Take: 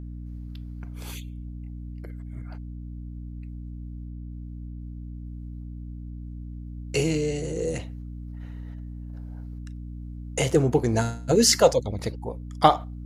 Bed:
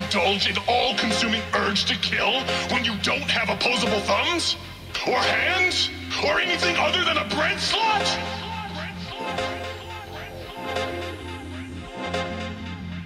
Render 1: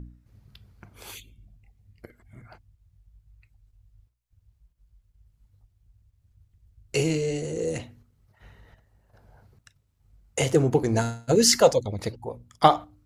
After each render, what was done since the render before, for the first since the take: de-hum 60 Hz, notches 5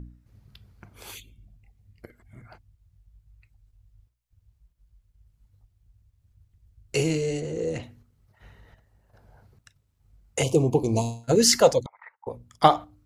7.40–7.83 s: distance through air 83 m; 10.43–11.24 s: elliptic band-stop 1.1–2.4 kHz; 11.86–12.27 s: elliptic band-pass 910–2000 Hz, stop band 60 dB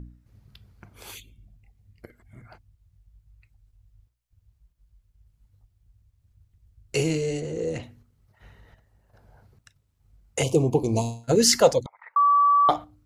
12.16–12.69 s: bleep 1.15 kHz -15 dBFS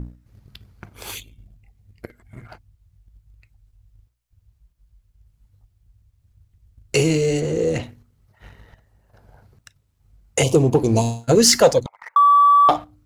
in parallel at -0.5 dB: compression, threshold -28 dBFS, peak gain reduction 16 dB; on the sum: waveshaping leveller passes 1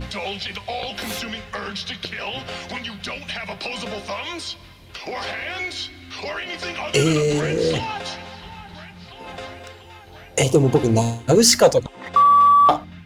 add bed -7.5 dB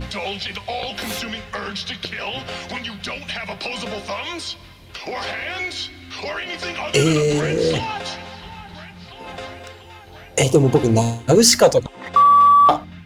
trim +1.5 dB; peak limiter -3 dBFS, peak gain reduction 1.5 dB

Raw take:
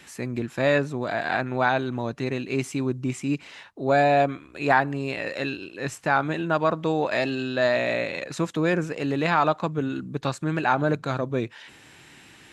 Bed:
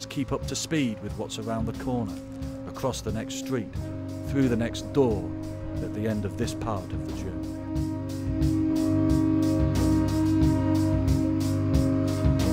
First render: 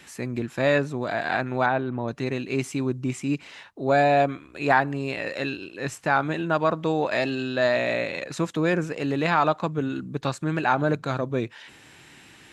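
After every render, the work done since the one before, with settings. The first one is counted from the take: 1.66–2.08 s: Bessel low-pass 1.8 kHz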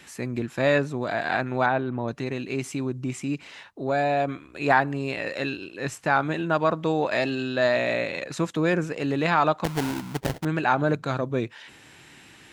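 2.15–4.28 s: compression 1.5:1, threshold -27 dBFS; 9.64–10.45 s: sample-rate reducer 1.2 kHz, jitter 20%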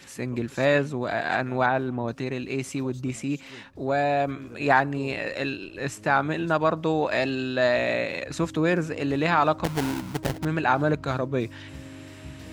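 add bed -18.5 dB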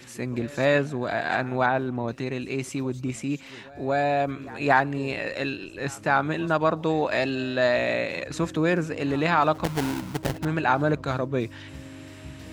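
reverse echo 227 ms -23 dB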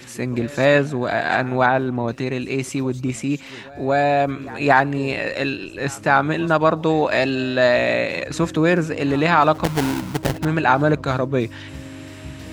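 trim +6 dB; peak limiter -2 dBFS, peak gain reduction 2 dB

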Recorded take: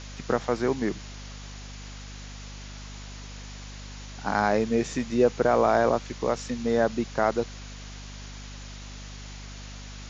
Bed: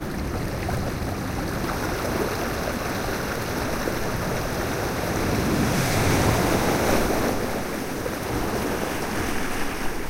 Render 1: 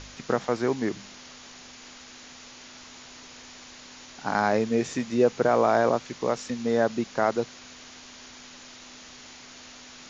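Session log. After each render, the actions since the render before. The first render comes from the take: de-hum 50 Hz, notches 4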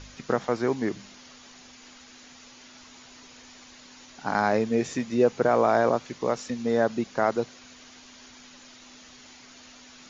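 noise reduction 6 dB, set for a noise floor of -47 dBFS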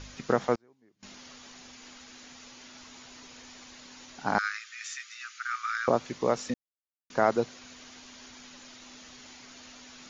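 0.55–1.03 s: inverted gate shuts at -33 dBFS, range -36 dB; 4.38–5.88 s: Chebyshev high-pass 1.2 kHz, order 8; 6.54–7.10 s: mute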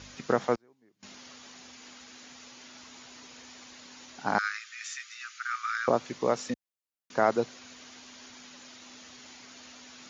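high-pass 57 Hz; bass shelf 140 Hz -4 dB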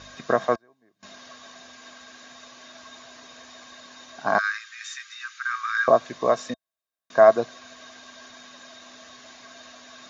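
small resonant body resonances 660/1100/1600/3700 Hz, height 15 dB, ringing for 45 ms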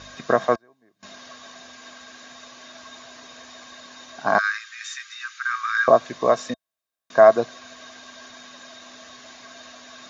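trim +2.5 dB; peak limiter -2 dBFS, peak gain reduction 1.5 dB

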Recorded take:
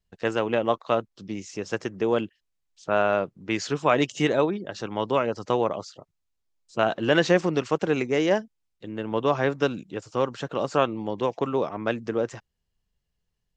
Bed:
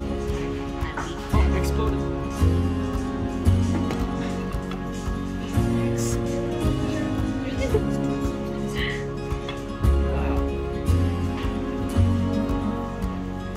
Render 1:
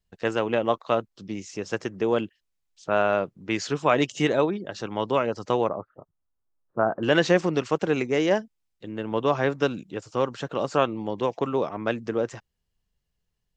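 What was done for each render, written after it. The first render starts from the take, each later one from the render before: 5.69–7.03 s: steep low-pass 1.5 kHz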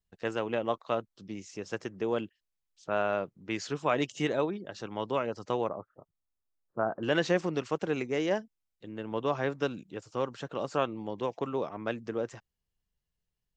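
trim -7 dB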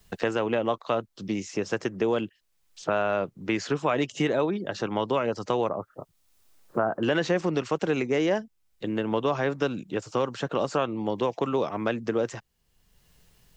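in parallel at +1 dB: peak limiter -23 dBFS, peak gain reduction 10 dB; on the sum: three bands compressed up and down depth 70%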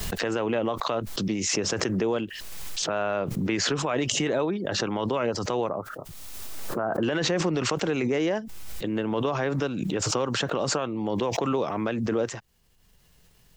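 peak limiter -17 dBFS, peak gain reduction 6 dB; swell ahead of each attack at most 22 dB/s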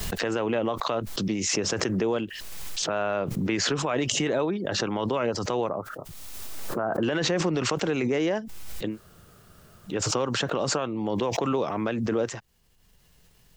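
8.93–9.91 s: room tone, crossfade 0.10 s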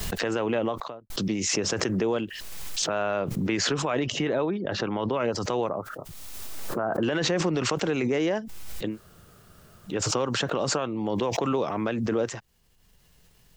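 0.62–1.10 s: studio fade out; 2.74–3.22 s: treble shelf 8.5 kHz +6.5 dB; 3.99–5.20 s: distance through air 140 m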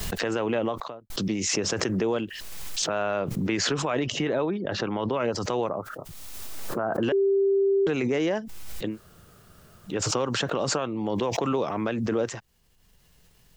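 7.12–7.87 s: bleep 393 Hz -18.5 dBFS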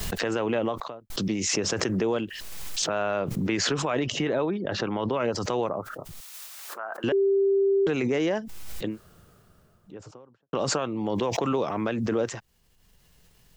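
6.20–7.04 s: high-pass 1.1 kHz; 8.73–10.53 s: studio fade out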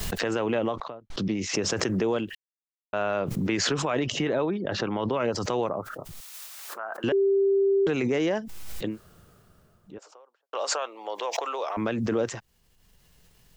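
0.76–1.54 s: distance through air 120 m; 2.35–2.93 s: mute; 9.98–11.77 s: high-pass 530 Hz 24 dB/octave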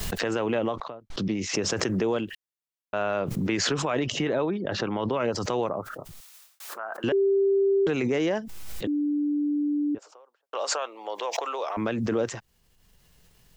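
5.94–6.60 s: fade out; 8.87–9.95 s: bleep 293 Hz -22.5 dBFS

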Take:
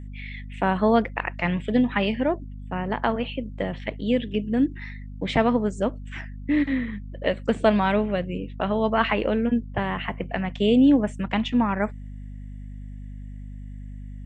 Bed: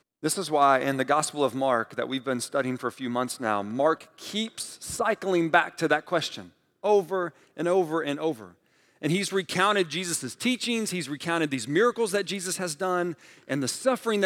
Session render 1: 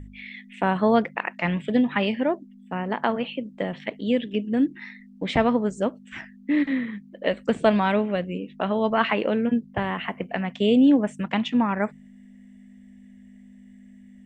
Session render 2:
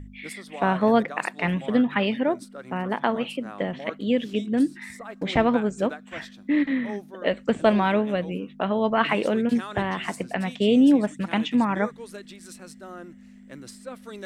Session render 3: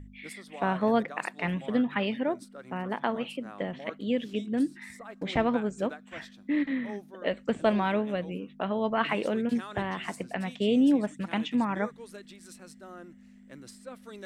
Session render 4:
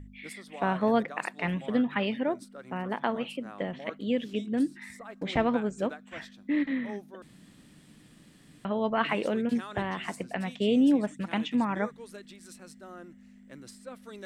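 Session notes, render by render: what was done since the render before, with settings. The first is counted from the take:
de-hum 50 Hz, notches 3
add bed -14.5 dB
trim -5.5 dB
7.22–8.65 s: room tone

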